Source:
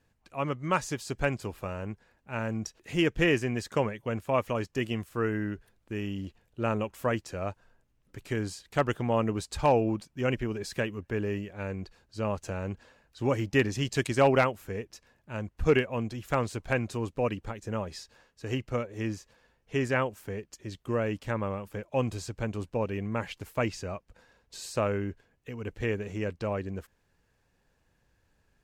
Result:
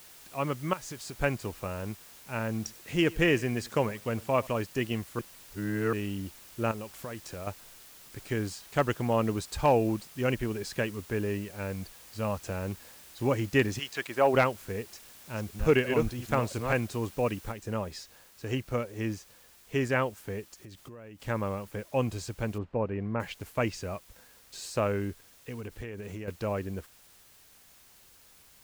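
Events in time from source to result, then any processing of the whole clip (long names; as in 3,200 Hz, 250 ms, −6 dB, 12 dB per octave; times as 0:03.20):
0:00.73–0:01.20: downward compressor, threshold −37 dBFS
0:02.50–0:04.47: single-tap delay 96 ms −22.5 dB
0:05.19–0:05.93: reverse
0:06.71–0:07.47: downward compressor 5 to 1, threshold −36 dBFS
0:11.72–0:12.44: parametric band 370 Hz −14.5 dB 0.25 octaves
0:13.78–0:14.33: resonant band-pass 3,000 Hz → 610 Hz, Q 0.7
0:14.83–0:16.80: delay that plays each chunk backwards 339 ms, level −5.5 dB
0:17.52: noise floor change −52 dB −58 dB
0:20.43–0:21.20: downward compressor 16 to 1, threshold −43 dBFS
0:22.58–0:23.20: low-pass filter 1,700 Hz
0:25.60–0:26.28: downward compressor 12 to 1, threshold −35 dBFS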